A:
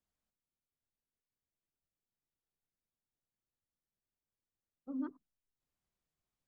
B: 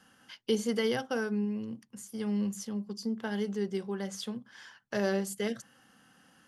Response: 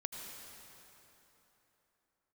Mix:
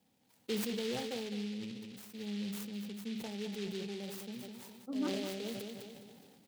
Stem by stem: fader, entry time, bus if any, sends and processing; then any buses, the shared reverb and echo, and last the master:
+2.0 dB, 0.00 s, no send, echo send −11 dB, no processing
0:04.41 −9 dB → 0:04.94 −2.5 dB, 0.00 s, send −24 dB, echo send −12 dB, brick-wall band-stop 990–5,000 Hz; short delay modulated by noise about 3,100 Hz, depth 0.15 ms; automatic ducking −17 dB, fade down 0.20 s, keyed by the first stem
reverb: on, RT60 3.6 s, pre-delay 73 ms
echo: repeating echo 207 ms, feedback 35%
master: high-pass filter 69 Hz; level that may fall only so fast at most 26 dB per second

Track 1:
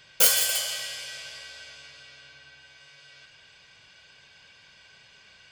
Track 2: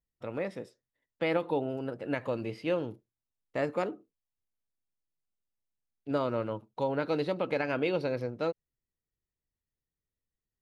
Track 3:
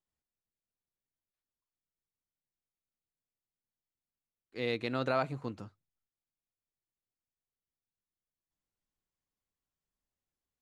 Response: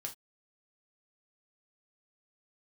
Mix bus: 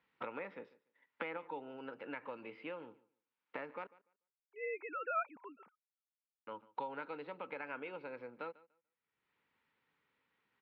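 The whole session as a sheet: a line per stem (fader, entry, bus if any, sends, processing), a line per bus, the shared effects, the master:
muted
−13.5 dB, 0.00 s, muted 0:03.87–0:06.47, no send, echo send −21 dB, multiband upward and downward compressor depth 100%
−6.0 dB, 0.00 s, no send, no echo send, three sine waves on the formant tracks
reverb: not used
echo: repeating echo 146 ms, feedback 18%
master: speech leveller 2 s; loudspeaker in its box 290–3,200 Hz, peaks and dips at 360 Hz −6 dB, 650 Hz −8 dB, 920 Hz +7 dB, 1,400 Hz +6 dB, 2,300 Hz +5 dB

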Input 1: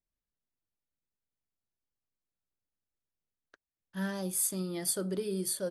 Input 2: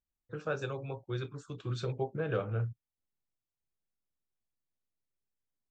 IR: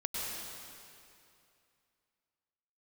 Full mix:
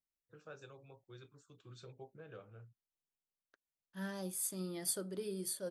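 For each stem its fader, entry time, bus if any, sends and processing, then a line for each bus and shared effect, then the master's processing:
−3.0 dB, 0.00 s, no send, amplitude modulation by smooth noise, depth 60%
−17.5 dB, 0.00 s, no send, high-shelf EQ 5,700 Hz +11 dB; automatic ducking −10 dB, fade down 2.00 s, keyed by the first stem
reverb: not used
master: low-shelf EQ 89 Hz −7 dB

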